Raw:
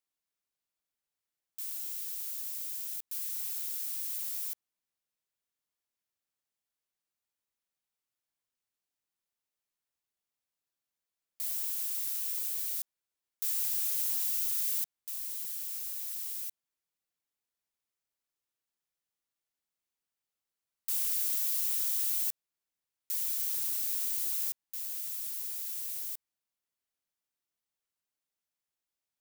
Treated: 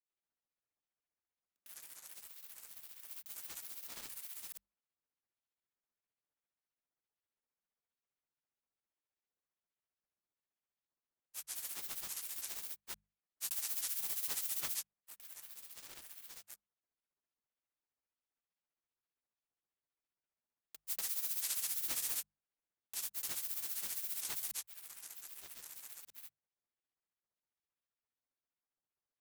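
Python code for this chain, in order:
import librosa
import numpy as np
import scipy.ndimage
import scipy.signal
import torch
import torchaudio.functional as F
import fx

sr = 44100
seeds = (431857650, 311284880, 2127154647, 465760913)

y = fx.wiener(x, sr, points=9)
y = fx.granulator(y, sr, seeds[0], grain_ms=100.0, per_s=15.0, spray_ms=155.0, spread_st=12)
y = fx.hum_notches(y, sr, base_hz=50, count=4)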